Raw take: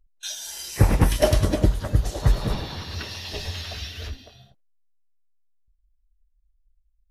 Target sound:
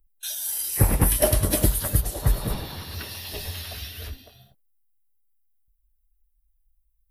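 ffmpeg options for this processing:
ffmpeg -i in.wav -filter_complex "[0:a]asplit=3[link_01][link_02][link_03];[link_01]afade=type=out:start_time=1.5:duration=0.02[link_04];[link_02]highshelf=frequency=2100:gain=11,afade=type=in:start_time=1.5:duration=0.02,afade=type=out:start_time=2:duration=0.02[link_05];[link_03]afade=type=in:start_time=2:duration=0.02[link_06];[link_04][link_05][link_06]amix=inputs=3:normalize=0,acrossover=split=350[link_07][link_08];[link_08]aexciter=amount=8.1:drive=3.9:freq=9000[link_09];[link_07][link_09]amix=inputs=2:normalize=0,volume=-2.5dB" out.wav

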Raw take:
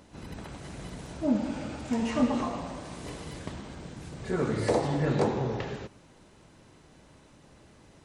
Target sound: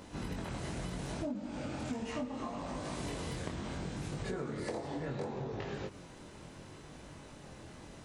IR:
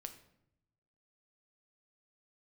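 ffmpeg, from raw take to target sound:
-af "flanger=delay=20:depth=3.9:speed=0.71,acompressor=threshold=-43dB:ratio=16,volume=8dB"

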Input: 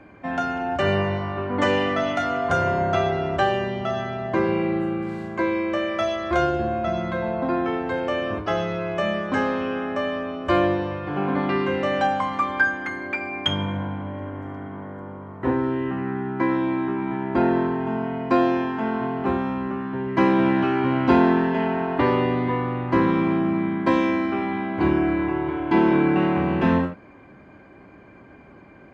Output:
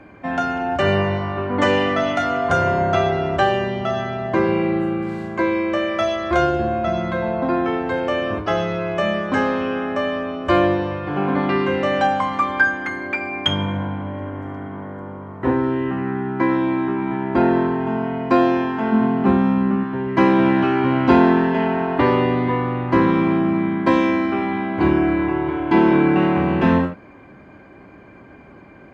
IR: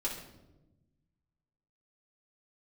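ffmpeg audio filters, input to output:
-filter_complex "[0:a]asettb=1/sr,asplit=3[link_01][link_02][link_03];[link_01]atrim=end=18.924[link_04];[link_02]atrim=start=18.92:end=19.84,asetpts=PTS-STARTPTS,afade=type=in:duration=0.004:curve=qsin,afade=type=out:start_time=0.916:duration=0.004:curve=qsin,equalizer=frequency=210:width_type=o:width=0.5:gain=11.5[link_05];[link_03]atrim=start=19.836[link_06];[link_04][link_05]acrossfade=duration=0.004:curve1=hsin:curve2=qsin[link_07];[link_07][link_06]acrossfade=duration=0.004:curve1=qsin:curve2=hsin,volume=3.5dB"

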